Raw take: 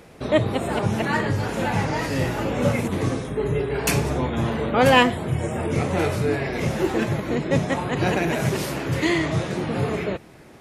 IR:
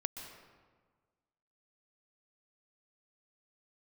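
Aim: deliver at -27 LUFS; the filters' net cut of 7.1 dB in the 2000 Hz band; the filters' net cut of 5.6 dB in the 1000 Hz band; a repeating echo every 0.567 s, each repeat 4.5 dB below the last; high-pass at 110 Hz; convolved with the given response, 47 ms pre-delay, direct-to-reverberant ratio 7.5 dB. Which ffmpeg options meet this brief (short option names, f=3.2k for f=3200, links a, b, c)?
-filter_complex "[0:a]highpass=110,equalizer=f=1k:t=o:g=-6,equalizer=f=2k:t=o:g=-7,aecho=1:1:567|1134|1701|2268|2835|3402|3969|4536|5103:0.596|0.357|0.214|0.129|0.0772|0.0463|0.0278|0.0167|0.01,asplit=2[a][b];[1:a]atrim=start_sample=2205,adelay=47[c];[b][c]afir=irnorm=-1:irlink=0,volume=-7.5dB[d];[a][d]amix=inputs=2:normalize=0,volume=-4dB"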